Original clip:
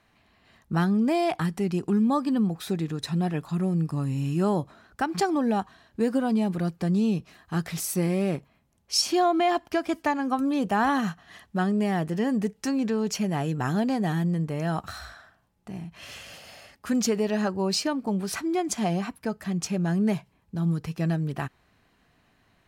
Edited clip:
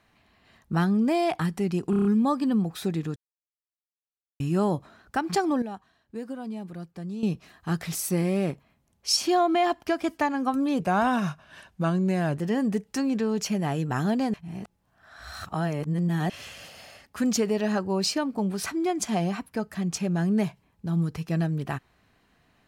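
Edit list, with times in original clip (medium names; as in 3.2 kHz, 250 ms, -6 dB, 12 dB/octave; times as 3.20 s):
1.90 s: stutter 0.03 s, 6 plays
3.01–4.25 s: mute
5.47–7.08 s: gain -11 dB
10.65–12.06 s: speed 90%
14.03–15.99 s: reverse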